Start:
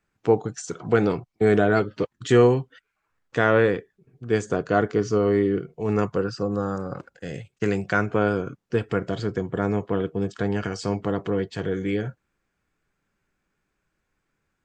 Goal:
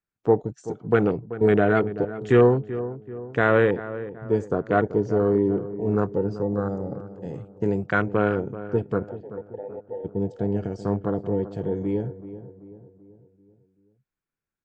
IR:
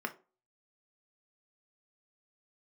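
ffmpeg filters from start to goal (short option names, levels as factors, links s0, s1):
-filter_complex "[0:a]asplit=3[s0][s1][s2];[s0]afade=t=out:st=9.08:d=0.02[s3];[s1]asplit=3[s4][s5][s6];[s4]bandpass=f=530:t=q:w=8,volume=1[s7];[s5]bandpass=f=1840:t=q:w=8,volume=0.501[s8];[s6]bandpass=f=2480:t=q:w=8,volume=0.355[s9];[s7][s8][s9]amix=inputs=3:normalize=0,afade=t=in:st=9.08:d=0.02,afade=t=out:st=10.04:d=0.02[s10];[s2]afade=t=in:st=10.04:d=0.02[s11];[s3][s10][s11]amix=inputs=3:normalize=0,afwtdn=0.0398,asplit=2[s12][s13];[s13]adelay=384,lowpass=f=1300:p=1,volume=0.224,asplit=2[s14][s15];[s15]adelay=384,lowpass=f=1300:p=1,volume=0.5,asplit=2[s16][s17];[s17]adelay=384,lowpass=f=1300:p=1,volume=0.5,asplit=2[s18][s19];[s19]adelay=384,lowpass=f=1300:p=1,volume=0.5,asplit=2[s20][s21];[s21]adelay=384,lowpass=f=1300:p=1,volume=0.5[s22];[s12][s14][s16][s18][s20][s22]amix=inputs=6:normalize=0"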